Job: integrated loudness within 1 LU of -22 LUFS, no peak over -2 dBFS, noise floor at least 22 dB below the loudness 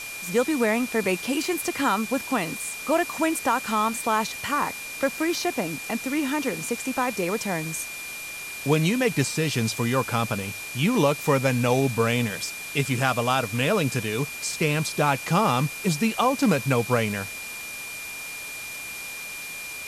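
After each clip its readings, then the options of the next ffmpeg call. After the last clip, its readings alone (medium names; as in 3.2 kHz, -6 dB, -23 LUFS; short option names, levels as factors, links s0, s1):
steady tone 2.4 kHz; tone level -35 dBFS; noise floor -36 dBFS; noise floor target -47 dBFS; loudness -25.0 LUFS; peak level -7.5 dBFS; loudness target -22.0 LUFS
-> -af "bandreject=f=2400:w=30"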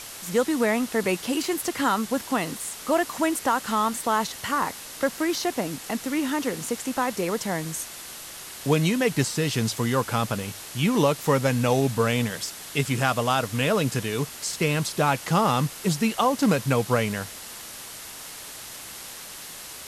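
steady tone not found; noise floor -40 dBFS; noise floor target -47 dBFS
-> -af "afftdn=nr=7:nf=-40"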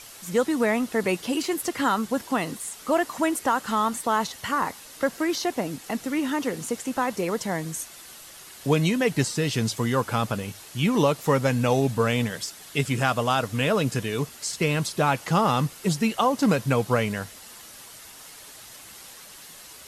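noise floor -45 dBFS; noise floor target -47 dBFS
-> -af "afftdn=nr=6:nf=-45"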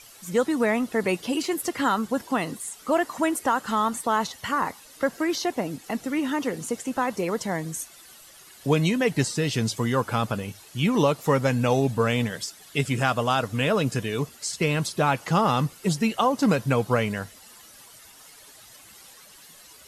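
noise floor -50 dBFS; loudness -25.5 LUFS; peak level -8.0 dBFS; loudness target -22.0 LUFS
-> -af "volume=1.5"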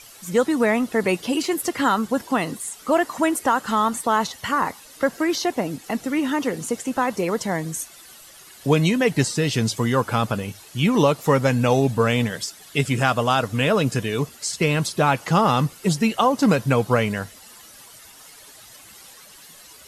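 loudness -22.0 LUFS; peak level -4.5 dBFS; noise floor -46 dBFS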